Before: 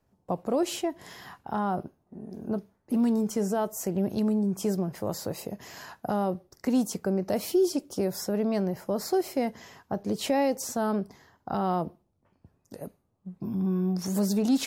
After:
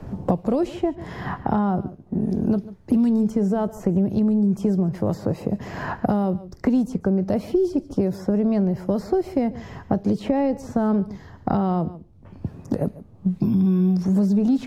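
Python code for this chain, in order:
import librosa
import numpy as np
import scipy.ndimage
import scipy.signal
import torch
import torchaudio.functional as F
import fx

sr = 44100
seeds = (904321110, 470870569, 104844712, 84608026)

p1 = fx.riaa(x, sr, side='playback')
p2 = p1 + fx.echo_single(p1, sr, ms=142, db=-20.5, dry=0)
y = fx.band_squash(p2, sr, depth_pct=100)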